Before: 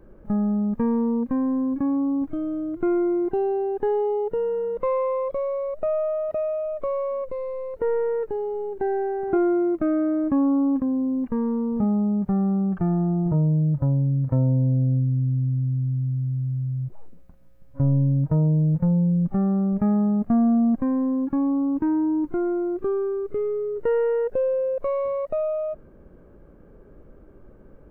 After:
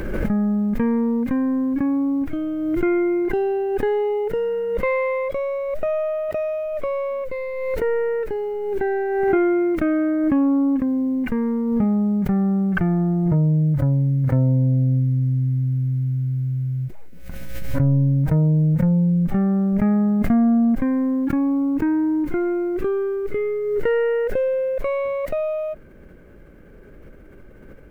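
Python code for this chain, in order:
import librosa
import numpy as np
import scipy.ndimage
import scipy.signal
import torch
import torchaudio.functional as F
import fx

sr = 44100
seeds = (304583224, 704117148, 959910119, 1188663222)

y = fx.high_shelf_res(x, sr, hz=1500.0, db=9.0, q=1.5)
y = fx.small_body(y, sr, hz=(1500.0, 2100.0), ring_ms=45, db=7)
y = fx.pre_swell(y, sr, db_per_s=28.0)
y = y * librosa.db_to_amplitude(2.5)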